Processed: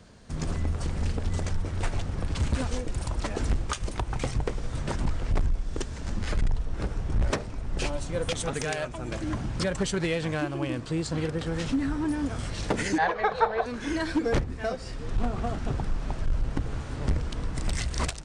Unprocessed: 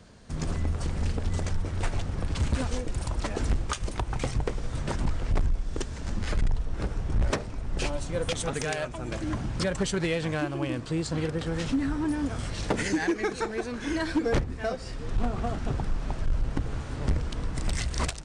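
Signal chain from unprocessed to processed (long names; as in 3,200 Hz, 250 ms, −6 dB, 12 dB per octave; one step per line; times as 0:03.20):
0:12.98–0:13.66: drawn EQ curve 170 Hz 0 dB, 320 Hz −20 dB, 500 Hz +11 dB, 960 Hz +12 dB, 2,400 Hz −2 dB, 3,800 Hz +3 dB, 5,900 Hz −15 dB, 9,900 Hz −20 dB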